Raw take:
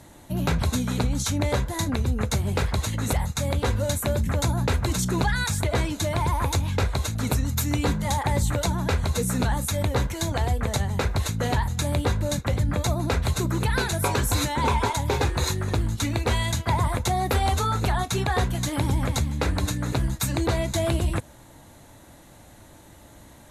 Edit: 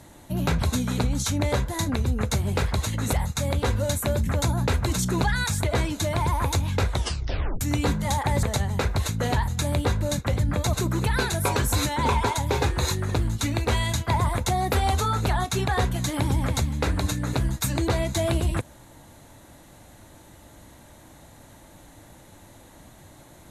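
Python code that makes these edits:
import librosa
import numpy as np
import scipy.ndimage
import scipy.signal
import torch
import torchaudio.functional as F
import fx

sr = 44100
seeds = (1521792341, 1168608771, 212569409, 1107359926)

y = fx.edit(x, sr, fx.tape_stop(start_s=6.92, length_s=0.69),
    fx.cut(start_s=8.43, length_s=2.2),
    fx.cut(start_s=12.93, length_s=0.39), tone=tone)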